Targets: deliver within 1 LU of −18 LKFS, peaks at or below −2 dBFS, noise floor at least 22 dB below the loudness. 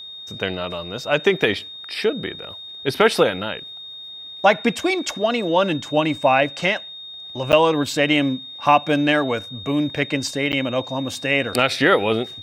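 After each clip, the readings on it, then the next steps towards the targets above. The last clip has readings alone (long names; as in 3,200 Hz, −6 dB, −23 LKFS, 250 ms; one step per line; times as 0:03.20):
number of dropouts 2; longest dropout 9.3 ms; interfering tone 3,700 Hz; level of the tone −34 dBFS; integrated loudness −20.5 LKFS; sample peak −2.0 dBFS; target loudness −18.0 LKFS
→ repair the gap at 0:07.52/0:10.52, 9.3 ms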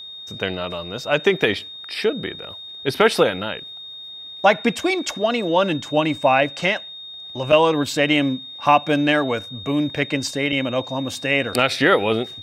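number of dropouts 0; interfering tone 3,700 Hz; level of the tone −34 dBFS
→ notch filter 3,700 Hz, Q 30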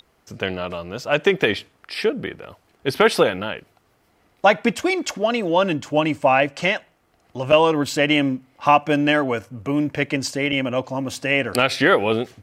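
interfering tone none found; integrated loudness −20.5 LKFS; sample peak −2.0 dBFS; target loudness −18.0 LKFS
→ level +2.5 dB
brickwall limiter −2 dBFS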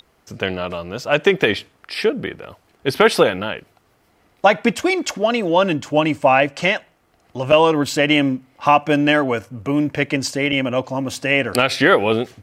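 integrated loudness −18.0 LKFS; sample peak −2.0 dBFS; background noise floor −60 dBFS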